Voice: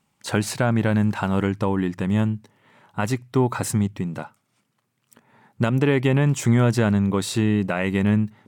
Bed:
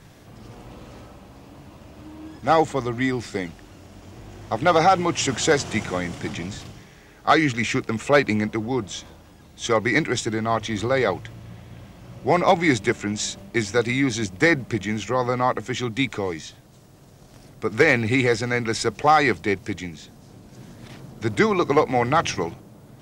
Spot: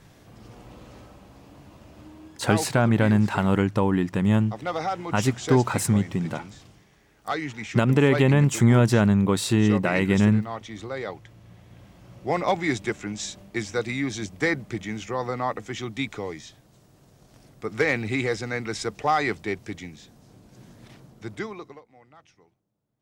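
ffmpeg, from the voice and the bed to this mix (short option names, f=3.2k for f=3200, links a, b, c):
-filter_complex "[0:a]adelay=2150,volume=0.5dB[a];[1:a]volume=1.5dB,afade=t=out:st=2.02:d=0.45:silence=0.421697,afade=t=in:st=11.18:d=0.77:silence=0.530884,afade=t=out:st=20.77:d=1.04:silence=0.0421697[b];[a][b]amix=inputs=2:normalize=0"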